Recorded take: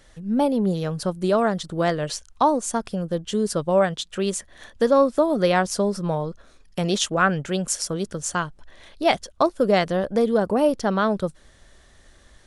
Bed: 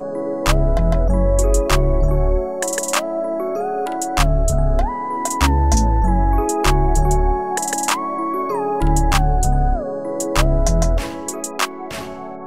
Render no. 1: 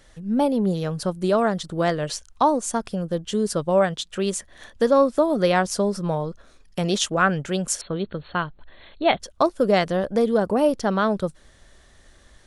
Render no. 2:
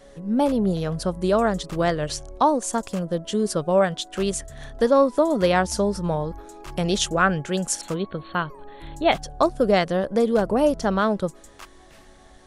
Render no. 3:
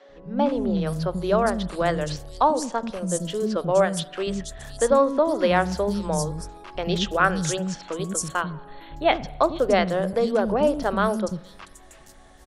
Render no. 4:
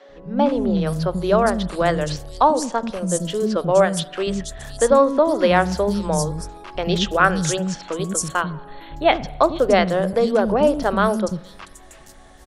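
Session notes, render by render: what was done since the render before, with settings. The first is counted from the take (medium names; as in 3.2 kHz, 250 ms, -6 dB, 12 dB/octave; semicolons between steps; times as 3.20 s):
7.81–9.20 s: brick-wall FIR low-pass 4.4 kHz
add bed -23.5 dB
three bands offset in time mids, lows, highs 90/470 ms, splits 290/4900 Hz; spring tank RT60 1 s, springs 44 ms, chirp 50 ms, DRR 18.5 dB
trim +4 dB; peak limiter -2 dBFS, peak gain reduction 1.5 dB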